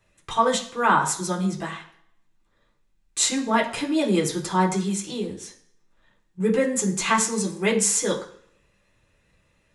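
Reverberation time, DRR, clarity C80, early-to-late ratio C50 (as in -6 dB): 0.60 s, -3.5 dB, 14.0 dB, 10.0 dB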